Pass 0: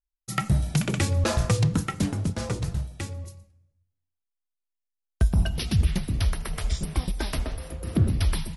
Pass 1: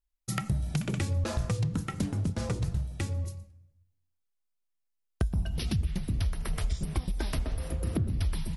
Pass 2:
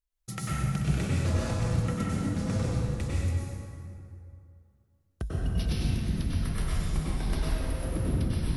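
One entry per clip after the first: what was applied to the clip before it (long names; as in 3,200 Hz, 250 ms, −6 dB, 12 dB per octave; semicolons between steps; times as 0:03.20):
downward compressor, threshold −31 dBFS, peak gain reduction 14.5 dB; low-shelf EQ 310 Hz +5.5 dB
in parallel at −4 dB: soft clipping −32 dBFS, distortion −9 dB; on the sum: dense smooth reverb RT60 2.5 s, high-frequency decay 0.6×, pre-delay 85 ms, DRR −7 dB; level −8 dB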